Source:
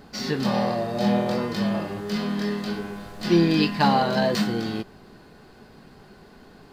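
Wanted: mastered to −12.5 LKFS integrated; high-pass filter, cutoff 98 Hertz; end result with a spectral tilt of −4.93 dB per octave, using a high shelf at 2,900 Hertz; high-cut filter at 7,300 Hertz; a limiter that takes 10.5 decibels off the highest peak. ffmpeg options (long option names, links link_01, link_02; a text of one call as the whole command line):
ffmpeg -i in.wav -af "highpass=98,lowpass=7300,highshelf=frequency=2900:gain=8.5,volume=13.5dB,alimiter=limit=-2dB:level=0:latency=1" out.wav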